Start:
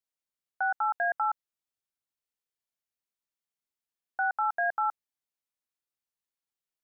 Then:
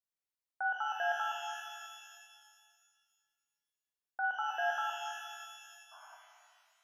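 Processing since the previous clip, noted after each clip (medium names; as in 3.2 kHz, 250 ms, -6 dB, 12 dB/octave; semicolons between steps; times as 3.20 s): painted sound noise, 5.91–6.15 s, 600–1600 Hz -49 dBFS; pitch-shifted reverb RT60 2 s, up +12 st, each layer -8 dB, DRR 1 dB; trim -7.5 dB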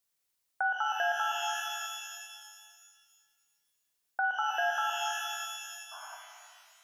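treble shelf 3.5 kHz +7 dB; compression 2.5:1, threshold -37 dBFS, peak gain reduction 7 dB; trim +8 dB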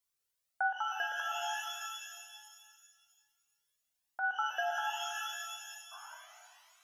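Shepard-style flanger rising 1.2 Hz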